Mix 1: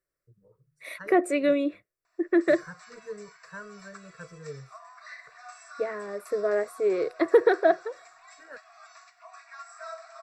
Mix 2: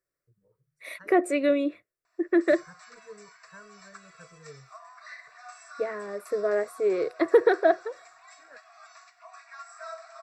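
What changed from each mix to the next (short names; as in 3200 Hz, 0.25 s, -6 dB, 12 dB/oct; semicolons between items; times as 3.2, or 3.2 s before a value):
first voice -7.5 dB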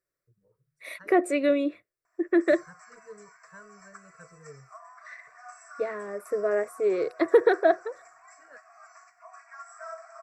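background: add Butterworth band-stop 3500 Hz, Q 0.92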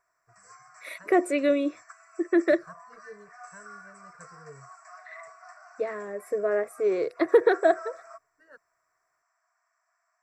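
background: entry -2.05 s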